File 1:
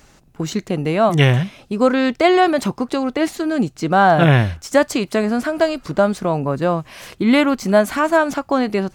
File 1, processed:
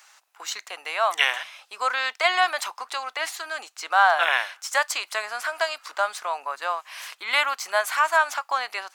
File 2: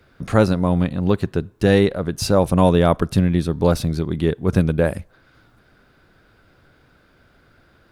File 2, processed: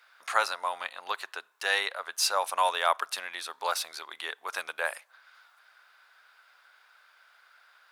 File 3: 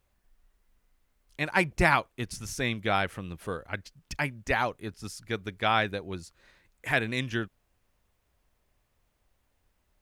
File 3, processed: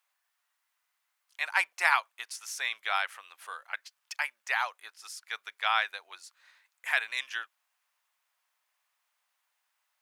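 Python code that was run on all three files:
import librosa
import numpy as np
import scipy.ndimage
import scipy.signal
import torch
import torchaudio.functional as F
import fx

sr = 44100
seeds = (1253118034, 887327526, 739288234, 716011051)

y = scipy.signal.sosfilt(scipy.signal.butter(4, 890.0, 'highpass', fs=sr, output='sos'), x)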